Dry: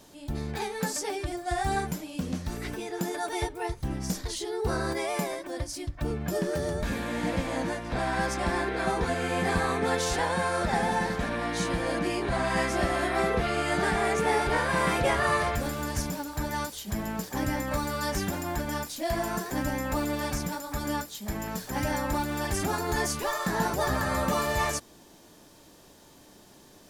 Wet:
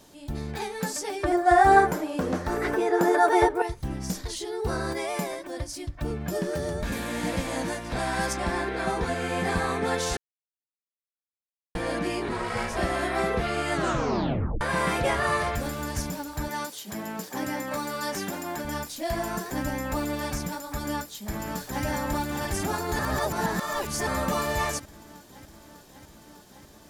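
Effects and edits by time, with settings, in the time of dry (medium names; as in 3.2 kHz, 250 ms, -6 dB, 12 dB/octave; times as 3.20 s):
1.23–3.62 s: high-order bell 770 Hz +13 dB 2.9 oct
6.92–8.33 s: treble shelf 5 kHz +9 dB
10.17–11.75 s: mute
12.28–12.77 s: ring modulator 300 Hz
13.73 s: tape stop 0.88 s
16.48–18.65 s: high-pass 200 Hz
20.67–21.85 s: echo throw 600 ms, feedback 80%, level -9 dB
22.99–24.07 s: reverse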